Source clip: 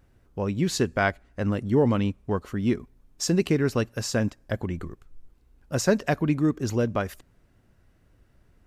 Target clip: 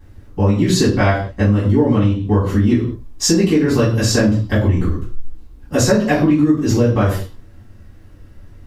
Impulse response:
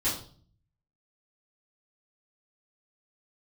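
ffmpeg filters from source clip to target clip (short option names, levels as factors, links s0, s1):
-filter_complex "[1:a]atrim=start_sample=2205,afade=t=out:st=0.27:d=0.01,atrim=end_sample=12348[s0];[0:a][s0]afir=irnorm=-1:irlink=0,acompressor=threshold=0.158:ratio=6,volume=1.88"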